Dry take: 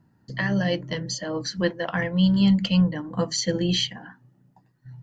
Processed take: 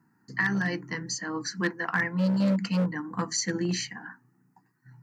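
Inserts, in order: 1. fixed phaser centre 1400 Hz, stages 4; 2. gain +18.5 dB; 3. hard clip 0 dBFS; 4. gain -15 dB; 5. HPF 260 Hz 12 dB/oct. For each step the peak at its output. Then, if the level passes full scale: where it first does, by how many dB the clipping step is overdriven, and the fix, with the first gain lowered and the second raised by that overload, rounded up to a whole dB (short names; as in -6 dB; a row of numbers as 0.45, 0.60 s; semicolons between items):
-12.5, +6.0, 0.0, -15.0, -13.0 dBFS; step 2, 6.0 dB; step 2 +12.5 dB, step 4 -9 dB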